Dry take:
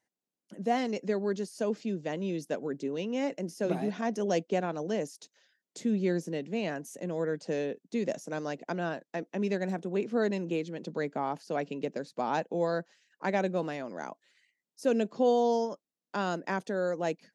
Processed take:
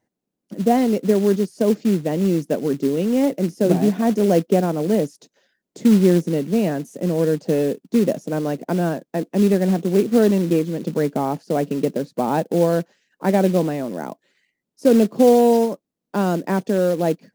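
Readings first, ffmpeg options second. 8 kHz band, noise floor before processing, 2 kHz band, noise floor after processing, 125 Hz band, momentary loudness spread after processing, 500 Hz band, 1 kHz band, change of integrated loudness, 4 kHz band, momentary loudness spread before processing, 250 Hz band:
+11.5 dB, under -85 dBFS, +4.5 dB, -82 dBFS, +15.5 dB, 8 LU, +12.0 dB, +8.5 dB, +13.0 dB, +8.5 dB, 8 LU, +15.0 dB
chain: -af "tiltshelf=f=770:g=8,acrusher=bits=5:mode=log:mix=0:aa=0.000001,volume=2.66"

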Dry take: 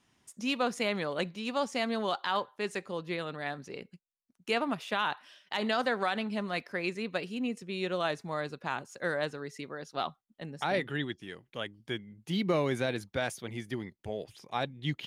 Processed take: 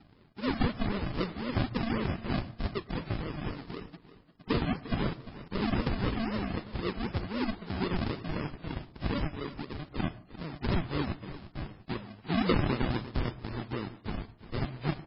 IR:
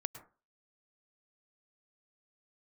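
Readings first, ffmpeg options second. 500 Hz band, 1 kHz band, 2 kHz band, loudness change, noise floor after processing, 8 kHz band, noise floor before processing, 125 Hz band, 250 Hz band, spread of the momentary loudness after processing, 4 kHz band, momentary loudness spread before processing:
-4.0 dB, -4.0 dB, -5.0 dB, -0.5 dB, -58 dBFS, under -30 dB, -78 dBFS, +8.0 dB, +3.5 dB, 11 LU, -4.0 dB, 11 LU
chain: -filter_complex "[0:a]lowpass=2100,bandreject=f=1500:w=17,afwtdn=0.00631,adynamicequalizer=threshold=0.00398:dfrequency=650:dqfactor=2.7:tfrequency=650:tqfactor=2.7:attack=5:release=100:ratio=0.375:range=4:mode=cutabove:tftype=bell,acompressor=mode=upward:threshold=0.00708:ratio=2.5,aresample=11025,acrusher=samples=19:mix=1:aa=0.000001:lfo=1:lforange=11.4:lforate=3.9,aresample=44100,aecho=1:1:348|696|1044:0.178|0.0533|0.016,asplit=2[s0][s1];[1:a]atrim=start_sample=2205[s2];[s1][s2]afir=irnorm=-1:irlink=0,volume=0.447[s3];[s0][s3]amix=inputs=2:normalize=0" -ar 12000 -c:a libmp3lame -b:a 16k

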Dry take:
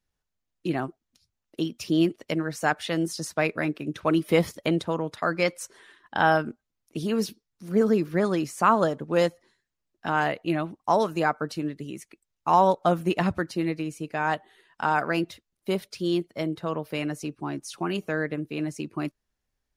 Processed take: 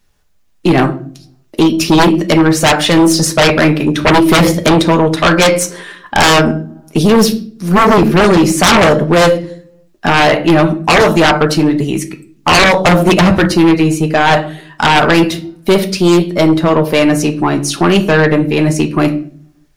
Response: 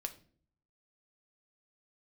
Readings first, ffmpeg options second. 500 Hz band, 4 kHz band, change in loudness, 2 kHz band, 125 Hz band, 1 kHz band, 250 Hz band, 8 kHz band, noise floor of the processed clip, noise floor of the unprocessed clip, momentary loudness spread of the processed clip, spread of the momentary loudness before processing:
+15.5 dB, +22.0 dB, +16.0 dB, +17.0 dB, +18.5 dB, +13.5 dB, +17.0 dB, +22.0 dB, -51 dBFS, -83 dBFS, 9 LU, 12 LU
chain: -filter_complex "[1:a]atrim=start_sample=2205[s0];[0:a][s0]afir=irnorm=-1:irlink=0,aeval=exprs='0.398*(cos(1*acos(clip(val(0)/0.398,-1,1)))-cos(1*PI/2))+0.0224*(cos(8*acos(clip(val(0)/0.398,-1,1)))-cos(8*PI/2))':c=same,aeval=exprs='0.631*sin(PI/2*8.91*val(0)/0.631)':c=same"

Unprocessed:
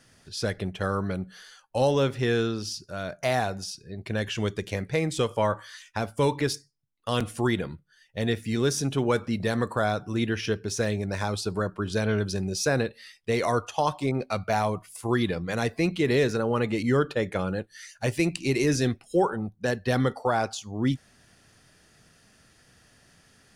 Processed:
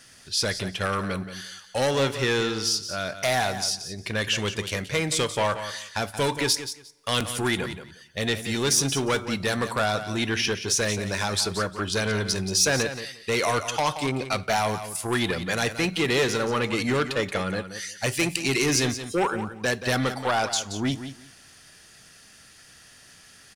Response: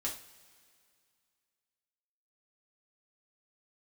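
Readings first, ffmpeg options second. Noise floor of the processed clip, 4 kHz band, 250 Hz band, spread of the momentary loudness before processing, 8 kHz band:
-52 dBFS, +9.0 dB, -1.0 dB, 9 LU, +10.0 dB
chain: -filter_complex "[0:a]aeval=exprs='0.251*(cos(1*acos(clip(val(0)/0.251,-1,1)))-cos(1*PI/2))+0.0355*(cos(5*acos(clip(val(0)/0.251,-1,1)))-cos(5*PI/2))':c=same,tiltshelf=f=1200:g=-5.5,aecho=1:1:177|354:0.282|0.0507,asplit=2[s0][s1];[1:a]atrim=start_sample=2205[s2];[s1][s2]afir=irnorm=-1:irlink=0,volume=0.119[s3];[s0][s3]amix=inputs=2:normalize=0"

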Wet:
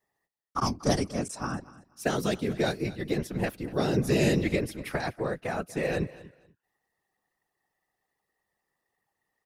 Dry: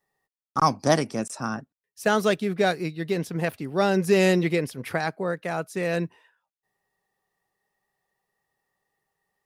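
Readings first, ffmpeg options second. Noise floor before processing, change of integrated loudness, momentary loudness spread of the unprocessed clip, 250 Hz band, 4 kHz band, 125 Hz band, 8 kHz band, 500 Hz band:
under -85 dBFS, -4.5 dB, 10 LU, -3.0 dB, -3.5 dB, -1.0 dB, -2.5 dB, -5.5 dB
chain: -filter_complex "[0:a]aeval=exprs='0.501*(cos(1*acos(clip(val(0)/0.501,-1,1)))-cos(1*PI/2))+0.0355*(cos(3*acos(clip(val(0)/0.501,-1,1)))-cos(3*PI/2))':c=same,acrossover=split=410|3000[s0][s1][s2];[s1]acompressor=threshold=0.0355:ratio=6[s3];[s0][s3][s2]amix=inputs=3:normalize=0,afftfilt=real='hypot(re,im)*cos(2*PI*random(0))':imag='hypot(re,im)*sin(2*PI*random(1))':win_size=512:overlap=0.75,aecho=1:1:240|480:0.112|0.0236,volume=1.88"

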